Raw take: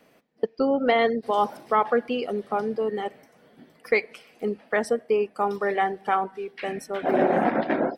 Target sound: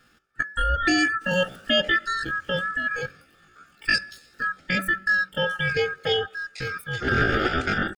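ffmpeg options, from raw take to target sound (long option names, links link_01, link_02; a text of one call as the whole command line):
ffmpeg -i in.wav -af "afftfilt=real='real(if(lt(b,1008),b+24*(1-2*mod(floor(b/24),2)),b),0)':imag='imag(if(lt(b,1008),b+24*(1-2*mod(floor(b/24),2)),b),0)':win_size=2048:overlap=0.75,asetrate=78577,aresample=44100,atempo=0.561231,bandreject=frequency=189.8:width_type=h:width=4,bandreject=frequency=379.6:width_type=h:width=4,bandreject=frequency=569.4:width_type=h:width=4,bandreject=frequency=759.2:width_type=h:width=4,bandreject=frequency=949:width_type=h:width=4,bandreject=frequency=1138.8:width_type=h:width=4,bandreject=frequency=1328.6:width_type=h:width=4,bandreject=frequency=1518.4:width_type=h:width=4,bandreject=frequency=1708.2:width_type=h:width=4,bandreject=frequency=1898:width_type=h:width=4" out.wav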